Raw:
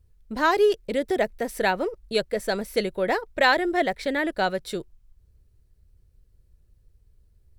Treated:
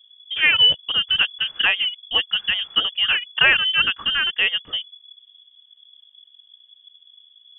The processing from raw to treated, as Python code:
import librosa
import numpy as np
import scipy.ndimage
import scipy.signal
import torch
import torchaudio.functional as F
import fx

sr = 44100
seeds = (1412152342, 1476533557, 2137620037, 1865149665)

y = fx.freq_invert(x, sr, carrier_hz=3400)
y = y * librosa.db_to_amplitude(4.0)